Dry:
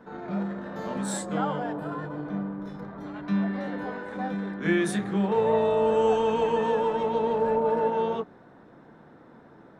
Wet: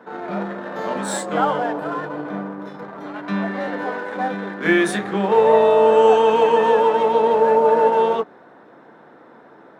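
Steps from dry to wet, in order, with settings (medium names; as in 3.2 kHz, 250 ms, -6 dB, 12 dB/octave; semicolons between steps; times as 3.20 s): tone controls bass -13 dB, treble -5 dB; in parallel at -8 dB: crossover distortion -42.5 dBFS; on the sum: high-pass 89 Hz; trim +8 dB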